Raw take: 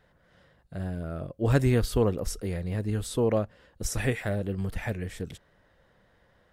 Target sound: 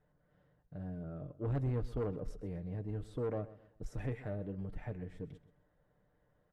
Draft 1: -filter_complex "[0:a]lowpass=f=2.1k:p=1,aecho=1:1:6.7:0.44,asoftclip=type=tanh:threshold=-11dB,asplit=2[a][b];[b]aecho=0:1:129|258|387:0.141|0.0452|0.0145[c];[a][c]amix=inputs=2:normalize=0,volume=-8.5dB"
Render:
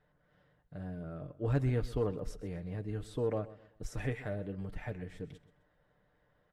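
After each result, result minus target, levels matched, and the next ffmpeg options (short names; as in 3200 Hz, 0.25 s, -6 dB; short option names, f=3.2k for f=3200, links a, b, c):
soft clip: distortion -12 dB; 2000 Hz band +5.0 dB
-filter_complex "[0:a]lowpass=f=2.1k:p=1,aecho=1:1:6.7:0.44,asoftclip=type=tanh:threshold=-21.5dB,asplit=2[a][b];[b]aecho=0:1:129|258|387:0.141|0.0452|0.0145[c];[a][c]amix=inputs=2:normalize=0,volume=-8.5dB"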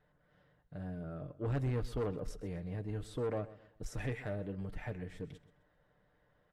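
2000 Hz band +6.0 dB
-filter_complex "[0:a]lowpass=f=650:p=1,aecho=1:1:6.7:0.44,asoftclip=type=tanh:threshold=-21.5dB,asplit=2[a][b];[b]aecho=0:1:129|258|387:0.141|0.0452|0.0145[c];[a][c]amix=inputs=2:normalize=0,volume=-8.5dB"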